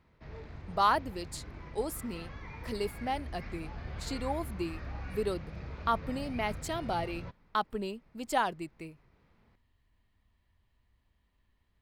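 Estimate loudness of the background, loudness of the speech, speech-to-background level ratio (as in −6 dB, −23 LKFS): −44.5 LKFS, −35.0 LKFS, 9.5 dB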